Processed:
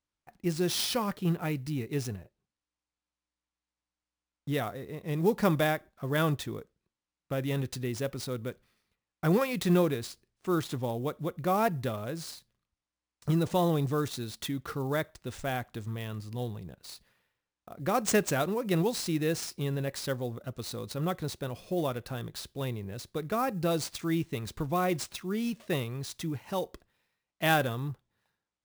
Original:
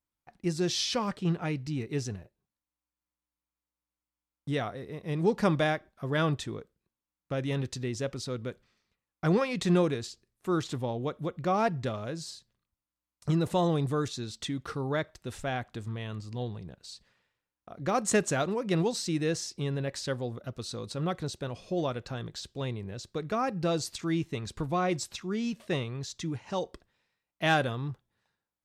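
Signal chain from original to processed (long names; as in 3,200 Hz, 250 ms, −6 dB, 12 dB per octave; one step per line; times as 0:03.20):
sample-rate reduction 15,000 Hz, jitter 20%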